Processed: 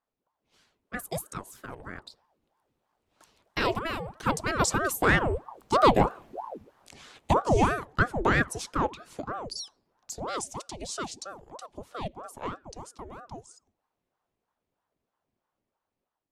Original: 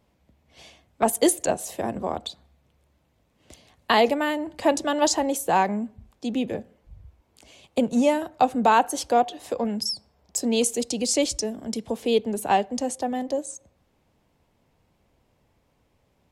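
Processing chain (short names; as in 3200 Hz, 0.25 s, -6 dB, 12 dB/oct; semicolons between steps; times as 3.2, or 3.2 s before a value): Doppler pass-by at 6.17, 29 m/s, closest 10 m; AGC gain up to 6 dB; ring modulator with a swept carrier 570 Hz, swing 75%, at 3.1 Hz; gain +6.5 dB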